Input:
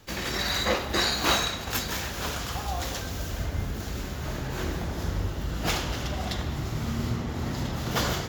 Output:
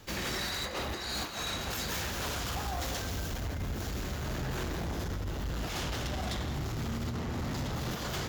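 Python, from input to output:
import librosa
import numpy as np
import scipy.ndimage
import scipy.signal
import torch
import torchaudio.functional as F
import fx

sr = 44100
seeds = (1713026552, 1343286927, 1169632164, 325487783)

y = fx.over_compress(x, sr, threshold_db=-29.0, ratio=-0.5)
y = 10.0 ** (-31.0 / 20.0) * np.tanh(y / 10.0 ** (-31.0 / 20.0))
y = y + 10.0 ** (-12.5 / 20.0) * np.pad(y, (int(167 * sr / 1000.0), 0))[:len(y)]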